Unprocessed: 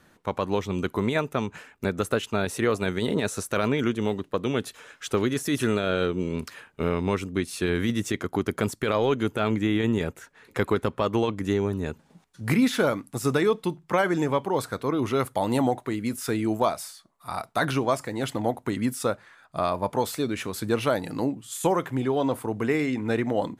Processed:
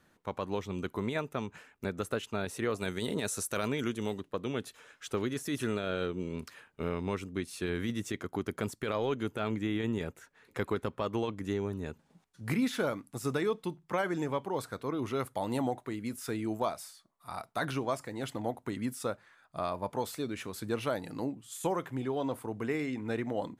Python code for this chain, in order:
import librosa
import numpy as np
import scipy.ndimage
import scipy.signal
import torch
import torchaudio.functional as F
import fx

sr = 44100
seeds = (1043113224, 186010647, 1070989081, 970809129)

y = fx.peak_eq(x, sr, hz=11000.0, db=9.5, octaves=2.0, at=(2.78, 4.21))
y = y * 10.0 ** (-8.5 / 20.0)